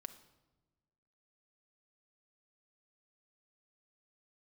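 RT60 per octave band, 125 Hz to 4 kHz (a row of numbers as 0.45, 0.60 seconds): 1.6, 1.6, 1.3, 1.0, 0.80, 0.75 seconds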